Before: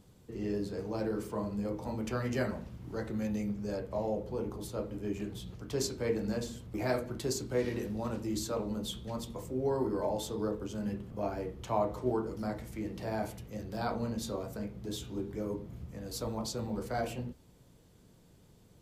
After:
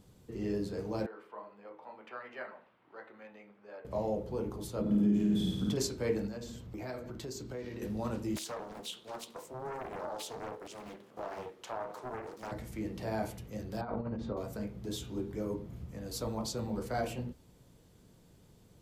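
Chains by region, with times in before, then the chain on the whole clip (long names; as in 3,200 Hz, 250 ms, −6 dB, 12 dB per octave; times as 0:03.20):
0:01.06–0:03.85: high-pass filter 880 Hz + high-frequency loss of the air 500 metres
0:04.81–0:05.77: flutter between parallel walls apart 9.1 metres, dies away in 1.1 s + downward compressor, threshold −36 dBFS + hollow resonant body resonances 200/3,400 Hz, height 18 dB, ringing for 50 ms
0:06.27–0:07.82: parametric band 10,000 Hz −11 dB 0.34 octaves + downward compressor 3 to 1, threshold −40 dBFS
0:08.36–0:12.52: high-pass filter 490 Hz + downward compressor 3 to 1, threshold −36 dBFS + highs frequency-modulated by the lows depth 0.96 ms
0:13.81–0:14.37: low-pass filter 1,700 Hz + compressor whose output falls as the input rises −36 dBFS, ratio −0.5
whole clip: no processing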